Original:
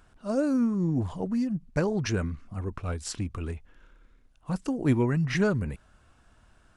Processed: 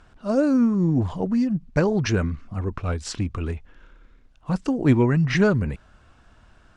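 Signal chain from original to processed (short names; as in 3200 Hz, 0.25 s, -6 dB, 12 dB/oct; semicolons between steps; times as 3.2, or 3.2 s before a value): LPF 6100 Hz 12 dB/oct; gain +6 dB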